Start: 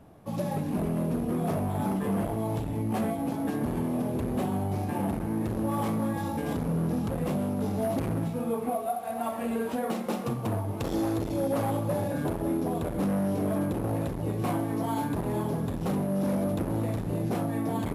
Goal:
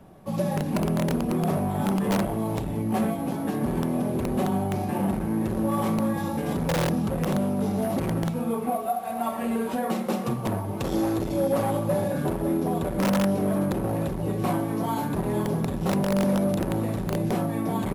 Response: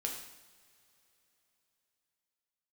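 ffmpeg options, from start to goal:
-filter_complex "[0:a]aecho=1:1:5.3:0.34,acrossover=split=240|6500[link_01][link_02][link_03];[link_01]aeval=exprs='(mod(16.8*val(0)+1,2)-1)/16.8':channel_layout=same[link_04];[link_04][link_02][link_03]amix=inputs=3:normalize=0,volume=3dB"

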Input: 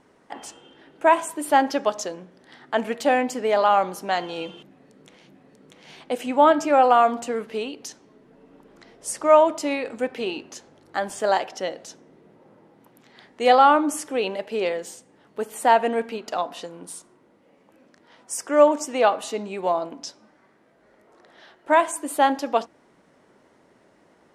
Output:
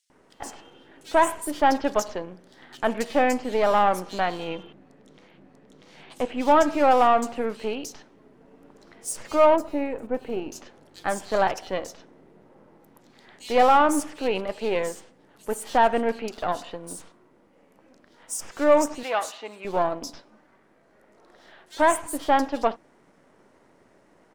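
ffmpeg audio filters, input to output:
ffmpeg -i in.wav -filter_complex "[0:a]aeval=exprs='if(lt(val(0),0),0.447*val(0),val(0))':channel_layout=same,asettb=1/sr,asplit=3[link_01][link_02][link_03];[link_01]atrim=end=4.494[link_04];[link_02]atrim=start=4.49:end=6.41,asetpts=PTS-STARTPTS,afade=type=in:duration=0.004:curve=qsin,afade=type=out:start_time=1.916:duration=0.004:curve=qsin,highshelf=frequency=7200:gain=-11[link_05];[link_03]atrim=start=6.406[link_06];[link_04][link_05]acrossfade=duration=0.004:curve1=hsin:curve2=qsin[link_07];[link_07][link_06]acrossfade=duration=0.004:curve1=qsin:curve2=hsin,asoftclip=type=tanh:threshold=-9.5dB,asettb=1/sr,asplit=3[link_08][link_09][link_10];[link_08]atrim=end=9.464[link_11];[link_09]atrim=start=9.46:end=10.42,asetpts=PTS-STARTPTS,afade=type=in:duration=0.004:curve=qsin,afade=type=out:start_time=0.956:duration=0.004:curve=qsin,equalizer=frequency=4700:width_type=o:width=2.7:gain=-14.5[link_12];[link_10]atrim=start=10.416[link_13];[link_11][link_12]acrossfade=duration=0.004:curve1=hsin:curve2=qsin[link_14];[link_14][link_13]acrossfade=duration=0.004:curve1=qsin:curve2=hsin,asettb=1/sr,asplit=3[link_15][link_16][link_17];[link_15]atrim=end=18.934[link_18];[link_16]atrim=start=18.93:end=19.55,asetpts=PTS-STARTPTS,afade=type=in:duration=0.004:curve=qsin,afade=type=out:start_time=0.616:duration=0.004:curve=qsin,highpass=frequency=1200:poles=1[link_19];[link_17]atrim=start=19.546[link_20];[link_18][link_19]acrossfade=duration=0.004:curve1=hsin:curve2=qsin[link_21];[link_21][link_20]acrossfade=duration=0.004:curve1=qsin:curve2=hsin,acrossover=split=3700[link_22][link_23];[link_22]adelay=100[link_24];[link_24][link_23]amix=inputs=2:normalize=0,volume=2dB" out.wav

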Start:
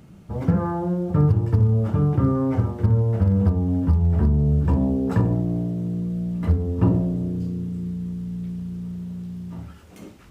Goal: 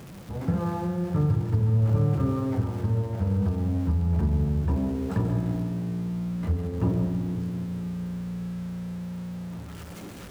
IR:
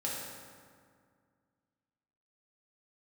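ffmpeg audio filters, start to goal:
-filter_complex "[0:a]aeval=exprs='val(0)+0.5*0.0237*sgn(val(0))':channel_layout=same,asplit=2[link_01][link_02];[1:a]atrim=start_sample=2205,adelay=135[link_03];[link_02][link_03]afir=irnorm=-1:irlink=0,volume=-10.5dB[link_04];[link_01][link_04]amix=inputs=2:normalize=0,volume=-7dB"

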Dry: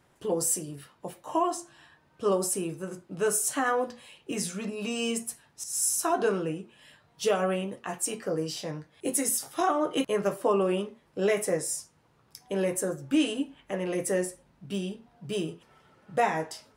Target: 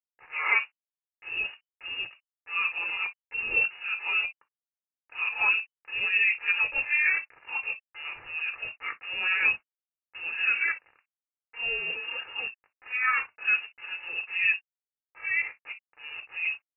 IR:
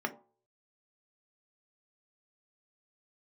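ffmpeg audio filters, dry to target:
-filter_complex "[0:a]areverse,aresample=11025,aeval=exprs='val(0)*gte(abs(val(0)),0.01)':channel_layout=same,aresample=44100,lowshelf=frequency=440:gain=-7.5[link_01];[1:a]atrim=start_sample=2205,atrim=end_sample=3087[link_02];[link_01][link_02]afir=irnorm=-1:irlink=0,lowpass=frequency=2600:width_type=q:width=0.5098,lowpass=frequency=2600:width_type=q:width=0.6013,lowpass=frequency=2600:width_type=q:width=0.9,lowpass=frequency=2600:width_type=q:width=2.563,afreqshift=-3000,volume=-3dB"

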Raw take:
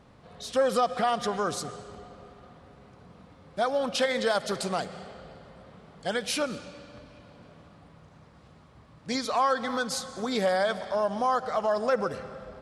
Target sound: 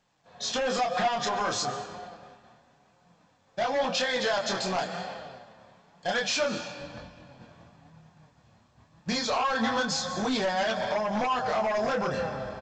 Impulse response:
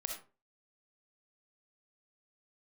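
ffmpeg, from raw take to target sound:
-af "asetnsamples=nb_out_samples=441:pad=0,asendcmd='6.81 highpass f 69',highpass=frequency=350:poles=1,agate=range=-33dB:threshold=-44dB:ratio=3:detection=peak,aecho=1:1:1.2:0.41,alimiter=limit=-24dB:level=0:latency=1:release=128,flanger=delay=22.5:depth=6.5:speed=0.28,aeval=exprs='0.119*sin(PI/2*3.98*val(0)/0.119)':channel_layout=same,flanger=delay=5.5:depth=3.5:regen=53:speed=0.99:shape=sinusoidal" -ar 16000 -c:a pcm_alaw

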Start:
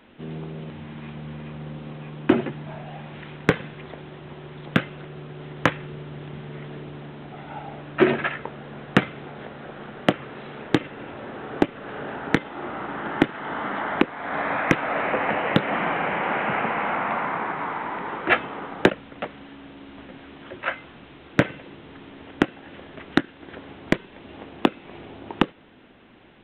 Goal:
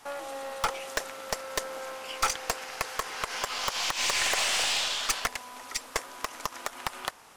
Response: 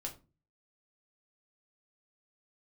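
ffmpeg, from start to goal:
-af "acrusher=bits=7:mode=log:mix=0:aa=0.000001,asetrate=158319,aresample=44100,aeval=exprs='(tanh(8.91*val(0)+0.4)-tanh(0.4))/8.91':channel_layout=same"

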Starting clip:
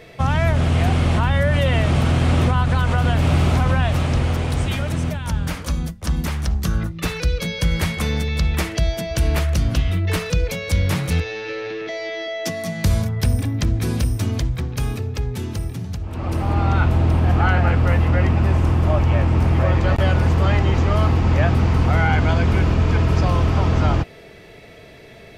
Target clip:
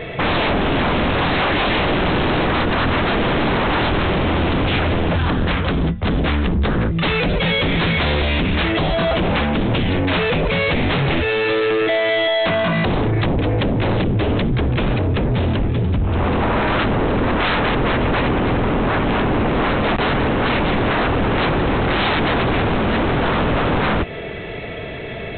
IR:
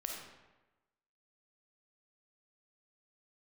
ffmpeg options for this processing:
-af "acompressor=threshold=-21dB:ratio=2,aresample=8000,aeval=exprs='0.282*sin(PI/2*5.01*val(0)/0.282)':channel_layout=same,aresample=44100,volume=-3.5dB"

